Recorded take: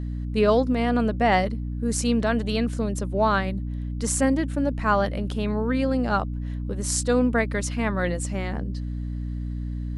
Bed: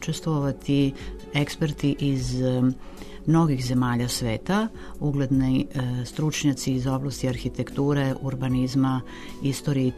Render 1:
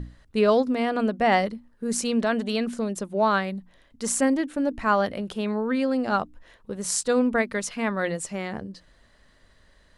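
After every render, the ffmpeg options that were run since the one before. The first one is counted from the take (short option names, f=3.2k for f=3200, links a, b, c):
-af "bandreject=f=60:t=h:w=6,bandreject=f=120:t=h:w=6,bandreject=f=180:t=h:w=6,bandreject=f=240:t=h:w=6,bandreject=f=300:t=h:w=6"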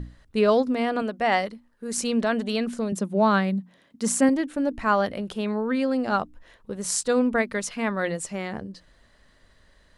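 -filter_complex "[0:a]asettb=1/sr,asplit=3[a][b][c];[a]atrim=end=1.024[d];[b]atrim=start=1.02:end=1.98,asetpts=PTS-STARTPTS,afade=t=in:d=0.004:c=qsin,afade=t=out:st=0.956:d=0.004:c=qsin,lowshelf=f=390:g=-8[e];[c]atrim=start=1.976[f];[d][e]acrossfade=d=0.004:c1=hsin:c2=qsin[g];[g][f]acrossfade=d=0.004:c1=qsin:c2=hsin,asettb=1/sr,asplit=3[h][i][j];[h]atrim=end=2.924[k];[i]atrim=start=2.92:end=4.29,asetpts=PTS-STARTPTS,afade=t=in:d=0.004:c=qsin,afade=t=out:st=1.366:d=0.004:c=qsin,highpass=f=180:t=q:w=2.2[l];[j]atrim=start=4.286[m];[k][l]acrossfade=d=0.004:c1=hsin:c2=qsin[n];[n][m]acrossfade=d=0.004:c1=qsin:c2=hsin"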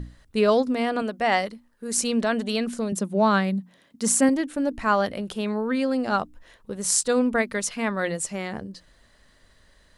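-af "highshelf=f=5.2k:g=6.5"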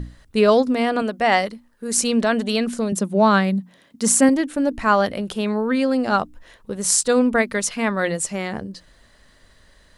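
-af "volume=4.5dB,alimiter=limit=-1dB:level=0:latency=1"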